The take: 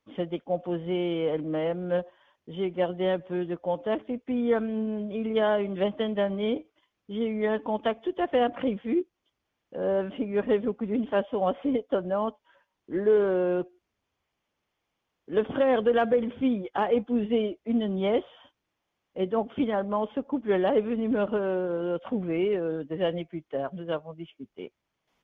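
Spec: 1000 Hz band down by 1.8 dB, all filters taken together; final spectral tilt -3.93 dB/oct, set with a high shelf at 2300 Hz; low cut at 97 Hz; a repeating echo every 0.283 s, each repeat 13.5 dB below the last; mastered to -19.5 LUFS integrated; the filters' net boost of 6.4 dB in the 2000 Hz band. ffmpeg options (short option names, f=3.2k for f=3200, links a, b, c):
-af "highpass=97,equalizer=f=1k:t=o:g=-5,equalizer=f=2k:t=o:g=7.5,highshelf=f=2.3k:g=4.5,aecho=1:1:283|566:0.211|0.0444,volume=8.5dB"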